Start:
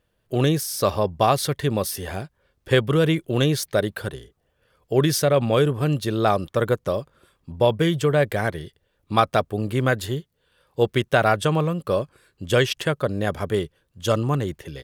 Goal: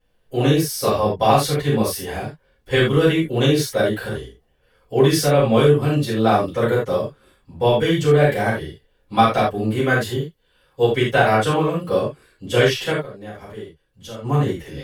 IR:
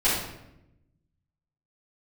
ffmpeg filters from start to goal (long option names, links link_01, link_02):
-filter_complex "[0:a]asplit=3[link_01][link_02][link_03];[link_01]afade=type=out:start_time=12.92:duration=0.02[link_04];[link_02]acompressor=threshold=-42dB:ratio=2.5,afade=type=in:start_time=12.92:duration=0.02,afade=type=out:start_time=14.23:duration=0.02[link_05];[link_03]afade=type=in:start_time=14.23:duration=0.02[link_06];[link_04][link_05][link_06]amix=inputs=3:normalize=0[link_07];[1:a]atrim=start_sample=2205,atrim=end_sample=4410[link_08];[link_07][link_08]afir=irnorm=-1:irlink=0,volume=-10dB"